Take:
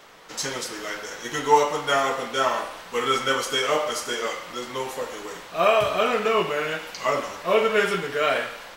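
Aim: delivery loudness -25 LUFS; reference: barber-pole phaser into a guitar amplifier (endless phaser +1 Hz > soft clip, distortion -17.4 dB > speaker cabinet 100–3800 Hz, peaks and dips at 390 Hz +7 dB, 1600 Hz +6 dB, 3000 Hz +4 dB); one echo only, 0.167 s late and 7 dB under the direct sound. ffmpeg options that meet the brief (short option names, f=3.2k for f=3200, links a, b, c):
-filter_complex "[0:a]aecho=1:1:167:0.447,asplit=2[a][b];[b]afreqshift=1[c];[a][c]amix=inputs=2:normalize=1,asoftclip=threshold=-15dB,highpass=100,equalizer=f=390:t=q:w=4:g=7,equalizer=f=1.6k:t=q:w=4:g=6,equalizer=f=3k:t=q:w=4:g=4,lowpass=f=3.8k:w=0.5412,lowpass=f=3.8k:w=1.3066,volume=0.5dB"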